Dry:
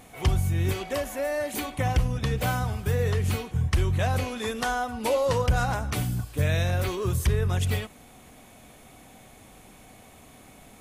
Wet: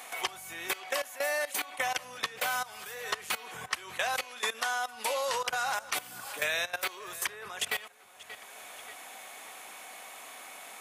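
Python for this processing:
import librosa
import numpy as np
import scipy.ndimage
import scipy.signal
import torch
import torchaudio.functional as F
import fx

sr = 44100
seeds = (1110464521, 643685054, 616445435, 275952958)

p1 = scipy.signal.sosfilt(scipy.signal.butter(2, 940.0, 'highpass', fs=sr, output='sos'), x)
p2 = fx.level_steps(p1, sr, step_db=18)
p3 = p2 + fx.echo_filtered(p2, sr, ms=582, feedback_pct=35, hz=4200.0, wet_db=-24, dry=0)
p4 = fx.band_squash(p3, sr, depth_pct=70)
y = p4 * 10.0 ** (6.0 / 20.0)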